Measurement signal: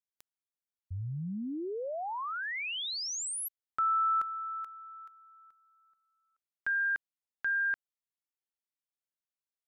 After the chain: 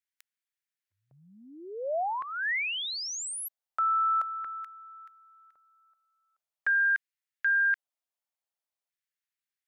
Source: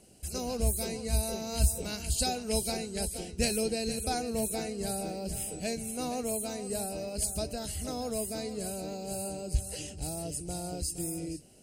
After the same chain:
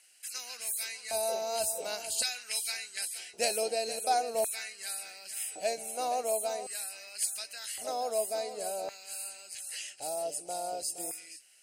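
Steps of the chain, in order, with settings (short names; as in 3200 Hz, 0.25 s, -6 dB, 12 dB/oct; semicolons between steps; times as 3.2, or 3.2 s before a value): dynamic EQ 110 Hz, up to +4 dB, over -46 dBFS, Q 1.3; LFO high-pass square 0.45 Hz 650–1800 Hz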